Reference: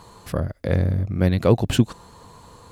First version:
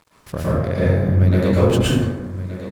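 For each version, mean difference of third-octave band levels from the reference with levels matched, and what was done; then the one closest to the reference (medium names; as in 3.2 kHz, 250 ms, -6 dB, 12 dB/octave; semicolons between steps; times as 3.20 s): 8.5 dB: compression 3:1, threshold -21 dBFS, peak gain reduction 8.5 dB; crossover distortion -42 dBFS; on a send: delay 1172 ms -13 dB; on the sum: plate-style reverb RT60 1.1 s, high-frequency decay 0.45×, pre-delay 100 ms, DRR -8.5 dB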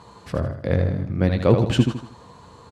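3.0 dB: high-pass 64 Hz; distance through air 69 m; doubling 15 ms -13 dB; feedback delay 79 ms, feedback 38%, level -7 dB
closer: second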